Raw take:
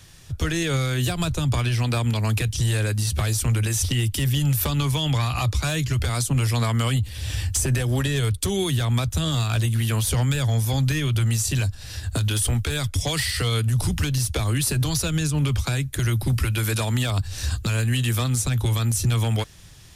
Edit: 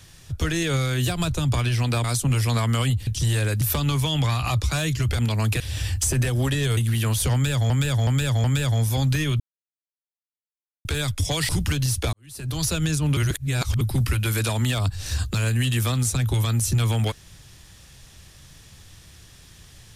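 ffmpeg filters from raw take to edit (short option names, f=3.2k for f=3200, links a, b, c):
-filter_complex "[0:a]asplit=16[a][b][c][d][e][f][g][h][i][j][k][l][m][n][o][p];[a]atrim=end=2.042[q];[b]atrim=start=6.098:end=7.132[r];[c]atrim=start=2.448:end=2.992[s];[d]atrim=start=4.518:end=6.102[t];[e]atrim=start=2.038:end=2.452[u];[f]atrim=start=7.128:end=8.302[v];[g]atrim=start=9.638:end=10.572[w];[h]atrim=start=10.198:end=10.572[x];[i]atrim=start=10.198:end=10.572[y];[j]atrim=start=10.198:end=11.16,asetpts=PTS-STARTPTS,afade=t=out:st=0.958:d=0.004:c=hsin[z];[k]atrim=start=11.16:end=12.61,asetpts=PTS-STARTPTS,volume=0[aa];[l]atrim=start=12.61:end=13.252,asetpts=PTS-STARTPTS,afade=t=in:d=0.004:c=hsin[ab];[m]atrim=start=13.808:end=14.45,asetpts=PTS-STARTPTS,afade=t=out:st=0.638:d=0.004:c=hsin[ac];[n]atrim=start=14.45:end=15.492,asetpts=PTS-STARTPTS,afade=t=in:d=0.52:c=qua[ad];[o]atrim=start=15.488:end=16.132,asetpts=PTS-STARTPTS,areverse[ae];[p]atrim=start=16.128[af];[q][r]acrossfade=d=0.004:c1=hsin:c2=hsin[ag];[ag][s]acrossfade=d=0.004:c1=hsin:c2=hsin[ah];[ah][t]acrossfade=d=0.004:c1=hsin:c2=hsin[ai];[ai][u]acrossfade=d=0.004:c1=hsin:c2=hsin[aj];[aj][v]acrossfade=d=0.004:c1=hsin:c2=hsin[ak];[ak][w]acrossfade=d=0.004:c1=hsin:c2=hsin[al];[al][x]acrossfade=d=0.004:c1=hsin:c2=hsin[am];[am][y]acrossfade=d=0.004:c1=hsin:c2=hsin[an];[z][aa][ab]concat=n=3:v=0:a=1[ao];[an][ao]acrossfade=d=0.004:c1=hsin:c2=hsin[ap];[ac][ad]concat=n=2:v=0:a=1[aq];[ap][aq]acrossfade=d=0.004:c1=hsin:c2=hsin[ar];[ar][ae]acrossfade=d=0.004:c1=hsin:c2=hsin[as];[as][af]acrossfade=d=0.004:c1=hsin:c2=hsin"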